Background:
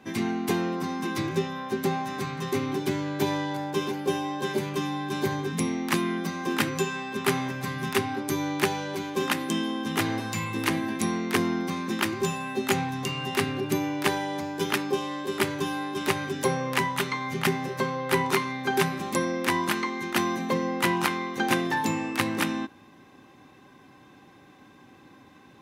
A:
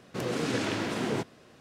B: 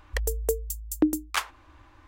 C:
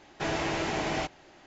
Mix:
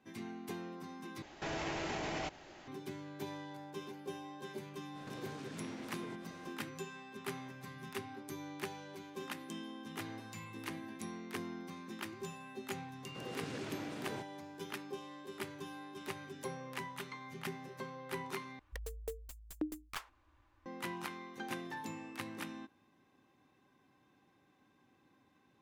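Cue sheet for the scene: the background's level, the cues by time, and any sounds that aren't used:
background -17.5 dB
1.22 s: replace with C + peak limiter -30.5 dBFS
4.93 s: add A -0.5 dB, fades 0.05 s + compression 16:1, threshold -45 dBFS
13.00 s: add A -14.5 dB
18.59 s: replace with B -16 dB + tracing distortion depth 0.088 ms

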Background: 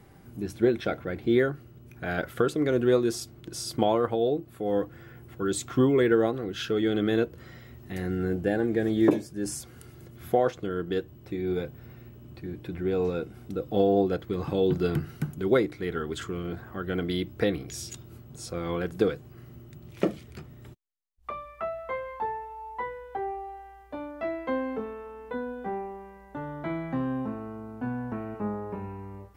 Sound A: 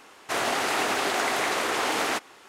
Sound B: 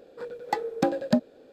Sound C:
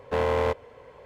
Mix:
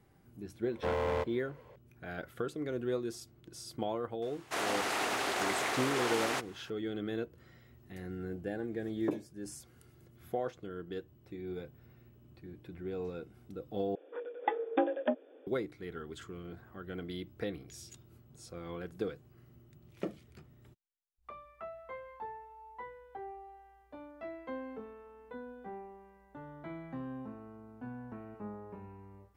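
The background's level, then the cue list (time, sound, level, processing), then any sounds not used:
background -12 dB
0.71 s: add C -8 dB
4.22 s: add A -7.5 dB
13.95 s: replace with B -4 dB + brick-wall FIR band-pass 250–3600 Hz

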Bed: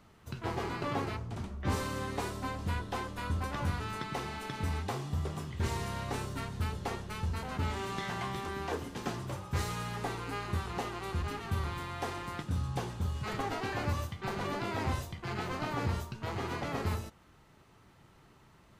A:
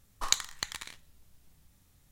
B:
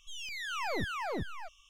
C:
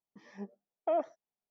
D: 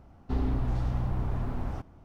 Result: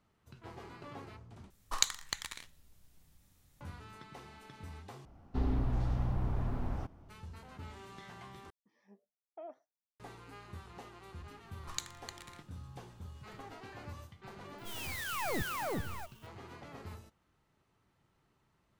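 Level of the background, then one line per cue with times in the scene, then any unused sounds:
bed -14 dB
1.50 s: replace with A -2.5 dB
5.05 s: replace with D -3.5 dB
8.50 s: replace with C -13 dB + flange 1.7 Hz, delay 6.5 ms, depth 2.7 ms, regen +78%
11.46 s: add A -13 dB
14.58 s: add B -1 dB + sampling jitter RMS 0.041 ms

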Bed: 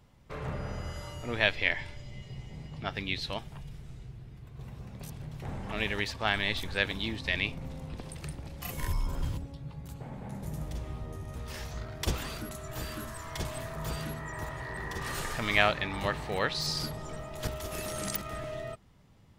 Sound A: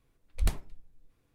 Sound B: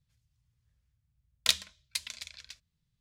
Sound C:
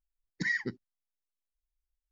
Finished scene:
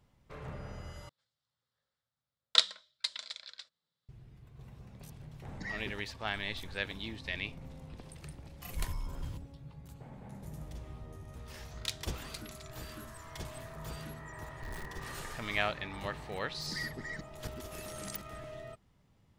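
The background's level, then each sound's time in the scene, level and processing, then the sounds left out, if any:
bed -7.5 dB
1.09 s: replace with B + cabinet simulation 370–7400 Hz, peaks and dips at 540 Hz +8 dB, 840 Hz +3 dB, 1.3 kHz +6 dB, 2.5 kHz -9 dB, 3.8 kHz +5 dB, 6.3 kHz -10 dB
5.20 s: add C -10.5 dB
8.35 s: add A -7.5 dB + tilt shelf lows -4 dB
10.39 s: add B -12 dB
14.25 s: add A -16 dB + companded quantiser 2-bit
16.31 s: add C -10 dB + chunks repeated in reverse 326 ms, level -2.5 dB

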